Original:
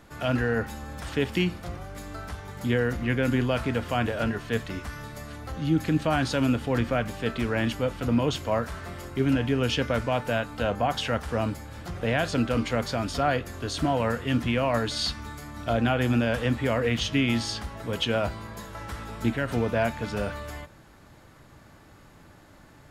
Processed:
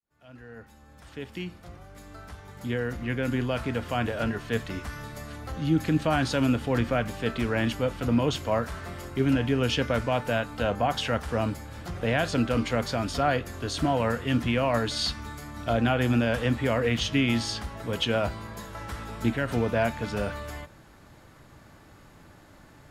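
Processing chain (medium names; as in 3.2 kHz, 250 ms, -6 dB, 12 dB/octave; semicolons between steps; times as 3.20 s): fade-in on the opening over 4.82 s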